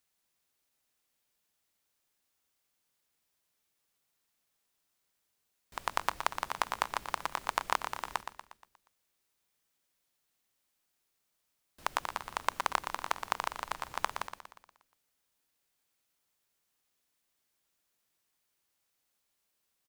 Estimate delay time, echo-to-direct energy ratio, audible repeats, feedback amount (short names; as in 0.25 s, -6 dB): 0.119 s, -7.5 dB, 5, 50%